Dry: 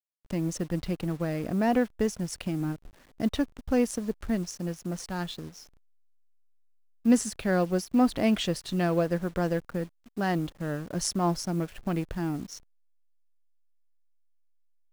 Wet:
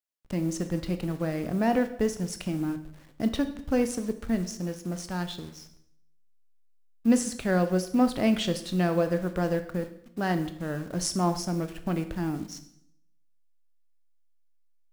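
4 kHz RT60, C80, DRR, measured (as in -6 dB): 0.65 s, 15.0 dB, 8.5 dB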